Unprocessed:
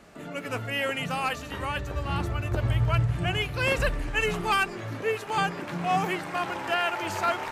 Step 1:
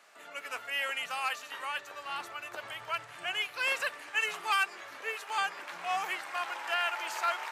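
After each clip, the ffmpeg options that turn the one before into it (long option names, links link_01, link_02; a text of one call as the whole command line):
ffmpeg -i in.wav -af "highpass=930,volume=-2.5dB" out.wav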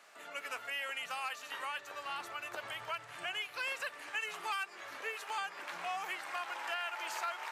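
ffmpeg -i in.wav -af "acompressor=threshold=-37dB:ratio=3" out.wav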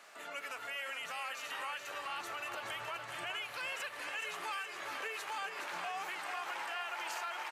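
ffmpeg -i in.wav -af "alimiter=level_in=11dB:limit=-24dB:level=0:latency=1:release=74,volume=-11dB,aecho=1:1:421|842|1263|1684|2105|2526|2947:0.447|0.255|0.145|0.0827|0.0472|0.0269|0.0153,volume=3dB" out.wav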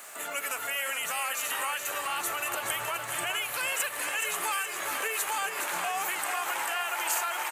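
ffmpeg -i in.wav -af "aexciter=amount=5.6:drive=4.1:freq=7000,volume=8.5dB" out.wav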